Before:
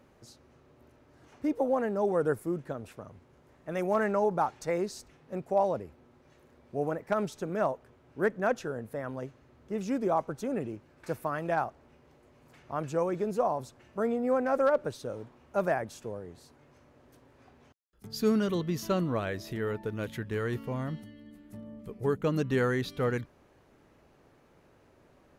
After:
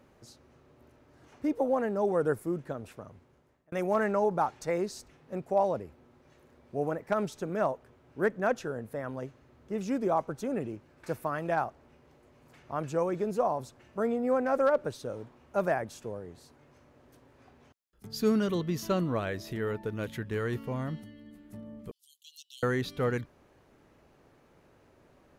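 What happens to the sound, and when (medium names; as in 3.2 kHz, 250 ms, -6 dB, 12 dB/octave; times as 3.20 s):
2.86–3.72 s: fade out equal-power
21.91–22.63 s: steep high-pass 3 kHz 96 dB/octave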